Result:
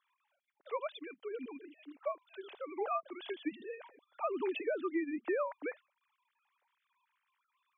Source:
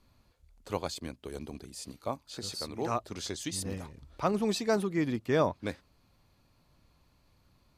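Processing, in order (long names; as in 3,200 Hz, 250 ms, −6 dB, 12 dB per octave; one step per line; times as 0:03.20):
three sine waves on the formant tracks
high-pass filter 390 Hz 6 dB per octave
downward compressor 6 to 1, threshold −32 dBFS, peak gain reduction 9.5 dB
level +1 dB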